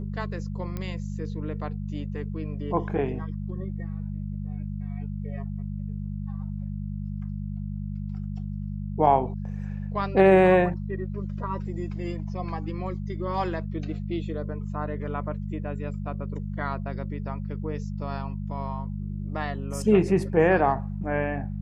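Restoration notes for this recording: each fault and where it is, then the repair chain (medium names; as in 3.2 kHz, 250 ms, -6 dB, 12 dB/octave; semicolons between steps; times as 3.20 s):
hum 50 Hz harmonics 4 -32 dBFS
0.77 s: pop -20 dBFS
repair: de-click; de-hum 50 Hz, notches 4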